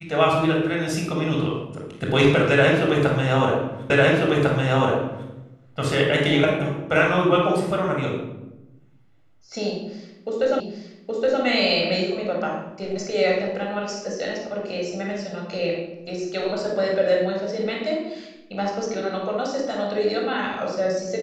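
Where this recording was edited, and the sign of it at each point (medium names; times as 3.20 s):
3.90 s: repeat of the last 1.4 s
10.60 s: repeat of the last 0.82 s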